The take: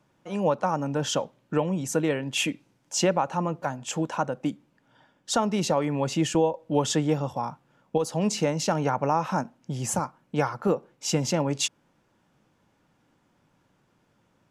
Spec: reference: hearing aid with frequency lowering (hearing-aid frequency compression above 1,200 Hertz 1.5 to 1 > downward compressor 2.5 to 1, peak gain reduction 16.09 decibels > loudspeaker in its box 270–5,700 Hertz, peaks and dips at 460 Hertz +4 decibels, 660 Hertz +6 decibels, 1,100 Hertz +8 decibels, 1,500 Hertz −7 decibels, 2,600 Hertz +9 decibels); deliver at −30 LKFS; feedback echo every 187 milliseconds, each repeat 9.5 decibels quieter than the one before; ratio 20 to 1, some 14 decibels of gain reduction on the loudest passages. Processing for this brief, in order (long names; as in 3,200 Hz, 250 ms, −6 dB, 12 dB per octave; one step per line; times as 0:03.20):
downward compressor 20 to 1, threshold −32 dBFS
repeating echo 187 ms, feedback 33%, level −9.5 dB
hearing-aid frequency compression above 1,200 Hz 1.5 to 1
downward compressor 2.5 to 1, threshold −54 dBFS
loudspeaker in its box 270–5,700 Hz, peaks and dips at 460 Hz +4 dB, 660 Hz +6 dB, 1,100 Hz +8 dB, 1,500 Hz −7 dB, 2,600 Hz +9 dB
level +19.5 dB